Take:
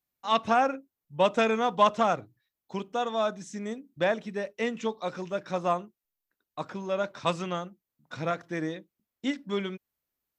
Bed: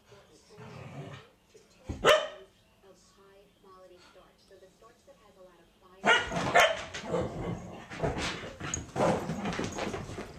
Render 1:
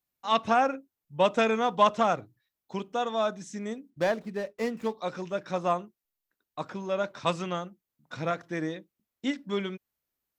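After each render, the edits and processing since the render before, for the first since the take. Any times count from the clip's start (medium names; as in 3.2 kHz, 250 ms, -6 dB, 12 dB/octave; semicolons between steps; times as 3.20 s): 3.90–4.94 s: median filter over 15 samples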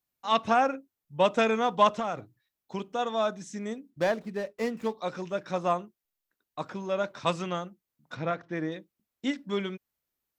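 1.98–2.99 s: compression, threshold -26 dBFS; 8.15–8.72 s: distance through air 150 m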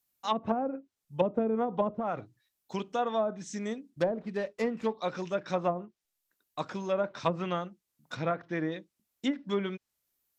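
low-pass that closes with the level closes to 420 Hz, closed at -21 dBFS; treble shelf 4.7 kHz +9.5 dB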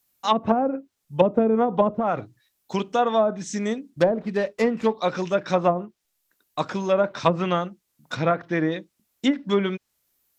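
trim +9 dB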